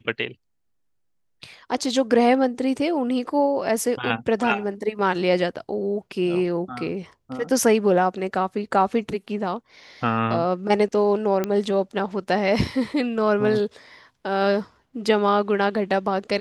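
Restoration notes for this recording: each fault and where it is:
11.44 s: pop -11 dBFS

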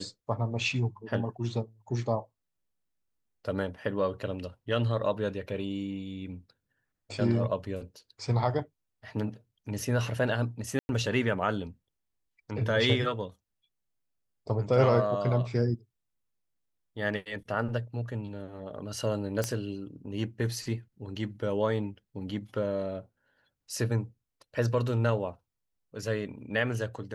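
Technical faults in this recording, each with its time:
10.79–10.89 s: dropout 101 ms
19.44 s: pop -14 dBFS

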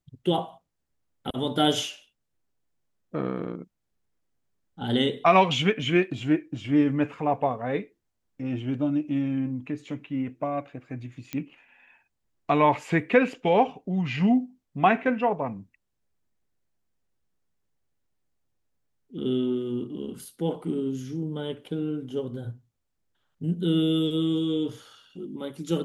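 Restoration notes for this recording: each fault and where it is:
11.33 s: pop -17 dBFS

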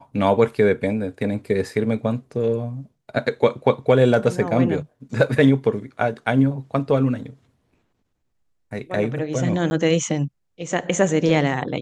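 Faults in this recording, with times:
9.70–9.71 s: dropout 10 ms

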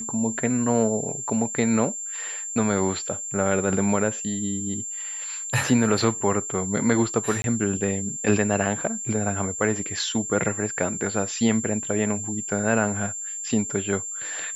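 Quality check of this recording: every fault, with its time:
whine 7.3 kHz -30 dBFS
7.42–7.44 s: dropout 22 ms

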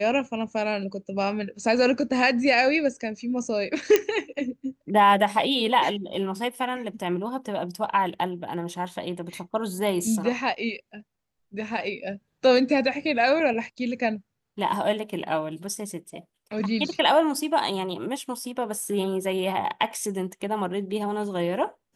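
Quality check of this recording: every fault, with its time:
3.96 s: pop -5 dBFS

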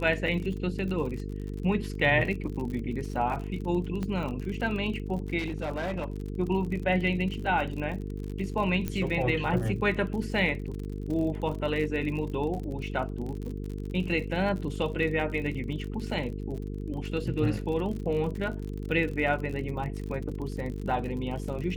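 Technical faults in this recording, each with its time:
buzz 50 Hz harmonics 9 -35 dBFS
crackle 50 per s -35 dBFS
4.03 s: pop -21 dBFS
5.38–6.22 s: clipped -27.5 dBFS
8.88 s: pop -17 dBFS

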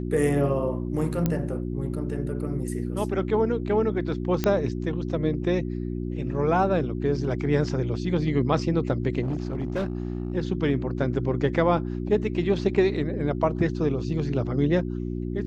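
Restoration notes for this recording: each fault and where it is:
hum 60 Hz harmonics 6 -30 dBFS
1.26 s: pop -11 dBFS
4.44 s: pop -10 dBFS
9.21–10.33 s: clipped -23 dBFS

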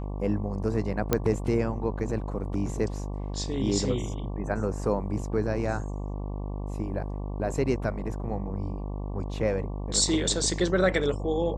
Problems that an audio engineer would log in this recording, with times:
buzz 50 Hz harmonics 23 -33 dBFS
1.13 s: pop -8 dBFS

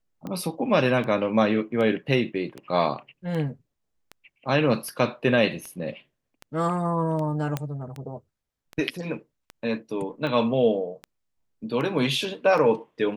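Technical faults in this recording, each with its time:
tick 78 rpm -22 dBFS
7.57 s: pop -13 dBFS

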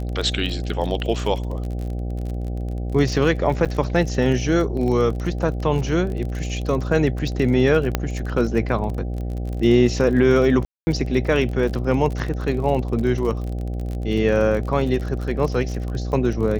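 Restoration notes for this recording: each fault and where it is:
buzz 60 Hz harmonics 13 -26 dBFS
crackle 37 per s -27 dBFS
3.65–3.66 s: dropout 6.9 ms
7.95 s: pop -5 dBFS
10.65–10.87 s: dropout 220 ms

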